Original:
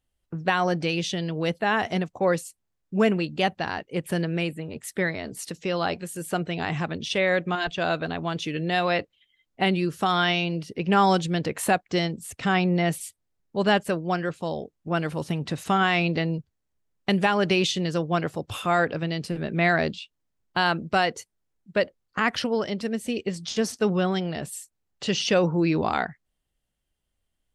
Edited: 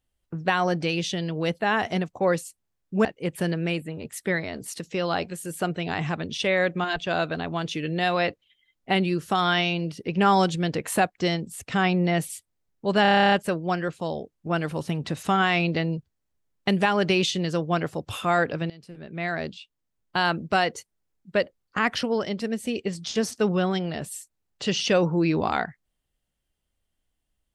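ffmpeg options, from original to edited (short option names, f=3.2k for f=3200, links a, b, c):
-filter_complex "[0:a]asplit=13[a][b][c][d][e][f][g][h][i][j][k][l][m];[a]atrim=end=3.052[n];[b]atrim=start=3.758:end=13.762[o];[c]atrim=start=13.728:end=13.762[p];[d]atrim=start=13.728:end=13.762[q];[e]atrim=start=13.728:end=13.762[r];[f]atrim=start=13.728:end=13.762[s];[g]atrim=start=13.728:end=13.762[t];[h]atrim=start=13.728:end=13.762[u];[i]atrim=start=13.728:end=13.762[v];[j]atrim=start=13.728:end=13.762[w];[k]atrim=start=13.728:end=13.762[x];[l]atrim=start=13.728:end=19.11,asetpts=PTS-STARTPTS,afade=t=out:st=5.378:d=0.004:c=hsin:silence=0.0944061[y];[m]atrim=start=19.11,asetpts=PTS-STARTPTS,afade=t=in:d=1.65:silence=0.0944061[z];[n][o]acrossfade=d=0.004:c1=hsin:c2=hsin[aa];[aa][p]acrossfade=d=0.004:c1=hsin:c2=hsin[ab];[ab][q]acrossfade=d=0.004:c1=hsin:c2=hsin[ac];[ac][r]acrossfade=d=0.004:c1=hsin:c2=hsin[ad];[ad][s]acrossfade=d=0.004:c1=hsin:c2=hsin[ae];[ae][t]acrossfade=d=0.004:c1=hsin:c2=hsin[af];[af][u]acrossfade=d=0.004:c1=hsin:c2=hsin[ag];[ag][v]acrossfade=d=0.004:c1=hsin:c2=hsin[ah];[ah][w]acrossfade=d=0.004:c1=hsin:c2=hsin[ai];[ai][x]acrossfade=d=0.004:c1=hsin:c2=hsin[aj];[y][z]concat=n=2:v=0:a=1[ak];[aj][ak]acrossfade=d=0.004:c1=hsin:c2=hsin"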